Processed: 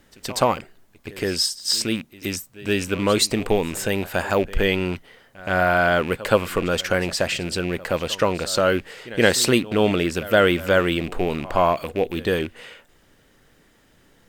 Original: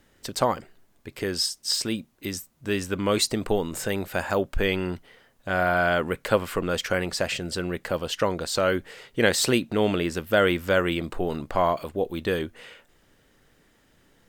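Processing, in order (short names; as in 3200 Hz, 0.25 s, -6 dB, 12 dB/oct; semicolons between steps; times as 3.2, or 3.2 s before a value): rattling part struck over -37 dBFS, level -27 dBFS; reverse echo 0.122 s -19 dB; gain +4 dB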